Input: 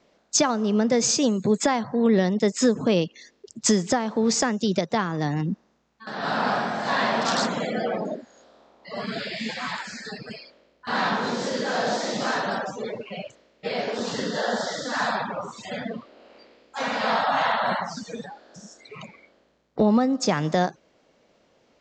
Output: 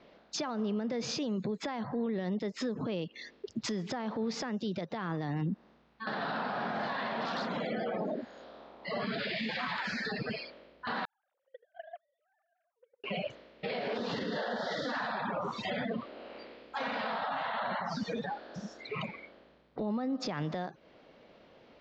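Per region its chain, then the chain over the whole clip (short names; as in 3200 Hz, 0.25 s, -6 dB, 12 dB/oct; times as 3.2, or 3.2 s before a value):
11.05–13.04 sine-wave speech + gate -20 dBFS, range -56 dB
whole clip: LPF 4200 Hz 24 dB/oct; compressor 10:1, threshold -30 dBFS; limiter -30.5 dBFS; gain +4 dB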